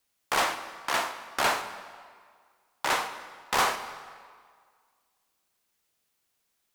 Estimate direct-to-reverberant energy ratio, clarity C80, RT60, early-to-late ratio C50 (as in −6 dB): 9.5 dB, 11.5 dB, 1.9 s, 10.5 dB